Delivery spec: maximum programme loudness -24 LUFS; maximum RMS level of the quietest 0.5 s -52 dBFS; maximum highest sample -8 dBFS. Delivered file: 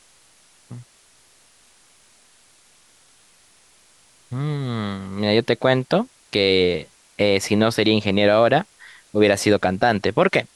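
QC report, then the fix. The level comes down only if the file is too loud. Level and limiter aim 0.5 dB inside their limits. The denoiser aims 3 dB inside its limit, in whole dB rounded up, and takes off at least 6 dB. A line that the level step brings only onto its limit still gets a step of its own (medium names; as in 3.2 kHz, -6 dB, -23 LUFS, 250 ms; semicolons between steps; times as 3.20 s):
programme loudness -19.5 LUFS: fail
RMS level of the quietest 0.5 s -55 dBFS: pass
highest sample -4.0 dBFS: fail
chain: trim -5 dB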